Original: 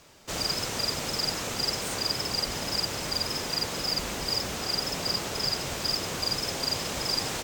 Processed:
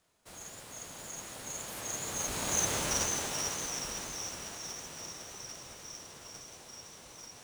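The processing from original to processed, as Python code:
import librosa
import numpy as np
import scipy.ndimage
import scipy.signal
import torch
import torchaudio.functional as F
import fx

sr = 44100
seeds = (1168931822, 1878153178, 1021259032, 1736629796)

y = fx.doppler_pass(x, sr, speed_mps=27, closest_m=9.1, pass_at_s=2.73)
y = fx.echo_thinned(y, sr, ms=505, feedback_pct=56, hz=420.0, wet_db=-7.0)
y = fx.formant_shift(y, sr, semitones=4)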